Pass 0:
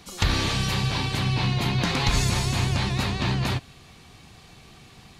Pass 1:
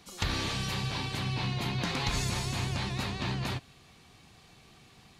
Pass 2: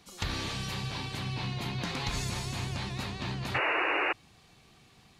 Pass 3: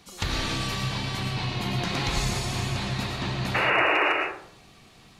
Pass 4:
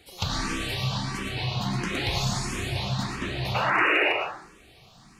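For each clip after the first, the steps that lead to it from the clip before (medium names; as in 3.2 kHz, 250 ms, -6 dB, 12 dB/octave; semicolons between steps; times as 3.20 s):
bass shelf 89 Hz -5 dB; trim -7 dB
painted sound noise, 3.54–4.13 s, 290–2900 Hz -26 dBFS; trim -2.5 dB
hard clipper -19 dBFS, distortion -37 dB; algorithmic reverb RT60 0.64 s, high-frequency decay 0.45×, pre-delay 70 ms, DRR 1.5 dB; trim +4.5 dB
barber-pole phaser +1.5 Hz; trim +2.5 dB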